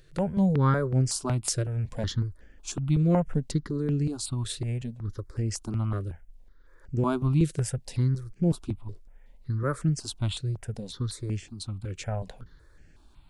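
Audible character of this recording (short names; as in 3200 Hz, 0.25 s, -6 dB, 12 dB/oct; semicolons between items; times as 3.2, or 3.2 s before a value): notches that jump at a steady rate 5.4 Hz 230–3800 Hz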